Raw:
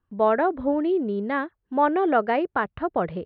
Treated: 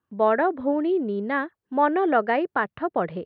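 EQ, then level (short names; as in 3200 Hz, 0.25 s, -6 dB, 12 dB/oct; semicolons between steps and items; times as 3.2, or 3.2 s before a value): HPF 140 Hz 12 dB/oct; dynamic EQ 1800 Hz, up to +5 dB, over -45 dBFS, Q 6.8; 0.0 dB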